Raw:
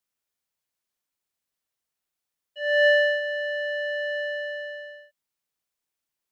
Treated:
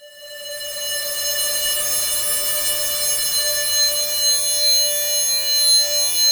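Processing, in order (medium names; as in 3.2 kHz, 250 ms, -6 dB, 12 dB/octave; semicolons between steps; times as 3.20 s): level rider gain up to 5 dB; integer overflow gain 21 dB; Schroeder reverb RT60 0.35 s, DRR -4 dB; Paulstretch 4.8×, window 0.50 s, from 2.43 s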